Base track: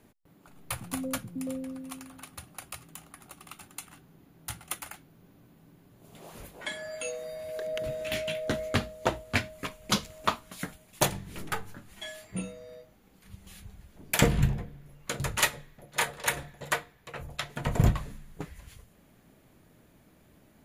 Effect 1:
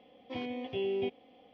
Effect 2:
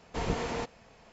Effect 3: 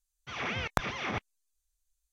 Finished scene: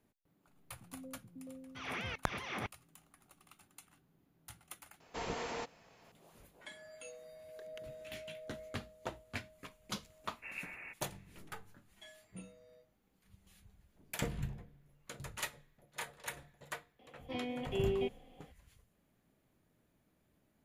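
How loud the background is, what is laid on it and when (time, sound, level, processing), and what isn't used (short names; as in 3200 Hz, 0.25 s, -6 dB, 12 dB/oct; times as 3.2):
base track -15 dB
1.48 add 3 -6.5 dB
5 add 2 -4.5 dB + low shelf 240 Hz -12 dB
10.28 add 2 -15.5 dB + inverted band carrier 2700 Hz
16.99 add 1 -2 dB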